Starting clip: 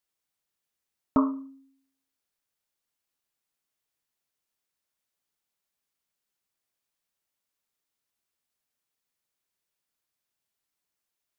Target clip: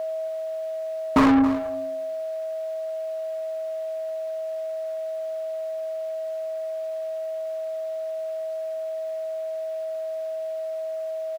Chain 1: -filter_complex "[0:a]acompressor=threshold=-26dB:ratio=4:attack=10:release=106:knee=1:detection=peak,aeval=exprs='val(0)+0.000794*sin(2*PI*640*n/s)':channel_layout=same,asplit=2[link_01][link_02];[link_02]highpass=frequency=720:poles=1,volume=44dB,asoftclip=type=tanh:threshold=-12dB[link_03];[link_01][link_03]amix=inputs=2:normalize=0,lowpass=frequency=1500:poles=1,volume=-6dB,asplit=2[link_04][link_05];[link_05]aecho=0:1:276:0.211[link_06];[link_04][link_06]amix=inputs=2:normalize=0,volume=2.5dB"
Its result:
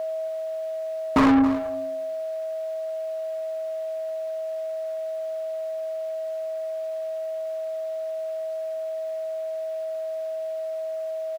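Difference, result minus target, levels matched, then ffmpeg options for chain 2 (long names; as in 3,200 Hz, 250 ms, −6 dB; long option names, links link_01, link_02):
downward compressor: peak gain reduction +7.5 dB
-filter_complex "[0:a]aeval=exprs='val(0)+0.000794*sin(2*PI*640*n/s)':channel_layout=same,asplit=2[link_01][link_02];[link_02]highpass=frequency=720:poles=1,volume=44dB,asoftclip=type=tanh:threshold=-12dB[link_03];[link_01][link_03]amix=inputs=2:normalize=0,lowpass=frequency=1500:poles=1,volume=-6dB,asplit=2[link_04][link_05];[link_05]aecho=0:1:276:0.211[link_06];[link_04][link_06]amix=inputs=2:normalize=0,volume=2.5dB"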